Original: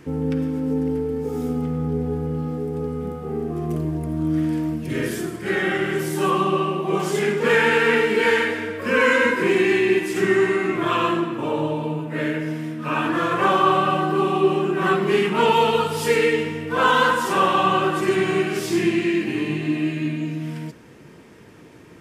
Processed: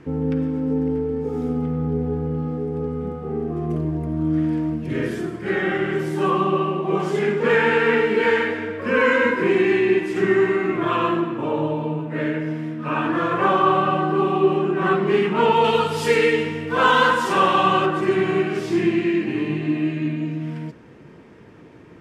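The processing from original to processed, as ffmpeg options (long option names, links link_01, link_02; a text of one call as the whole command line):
ffmpeg -i in.wav -filter_complex "[0:a]asettb=1/sr,asplit=3[link_01][link_02][link_03];[link_01]atrim=end=15.644[link_04];[link_02]atrim=start=15.64:end=17.86,asetpts=PTS-STARTPTS,afade=type=in:duration=0.004:curve=qsin,afade=type=out:start_time=2.216:duration=0.004:curve=qsin,highshelf=frequency=2700:gain=9.5[link_05];[link_03]atrim=start=17.856[link_06];[link_04][link_05]acrossfade=duration=0.004:curve1=hsin:curve2=qsin[link_07];[link_07][link_06]acrossfade=duration=0.004:curve1=qsin:curve2=hsin,aemphasis=mode=reproduction:type=75fm" out.wav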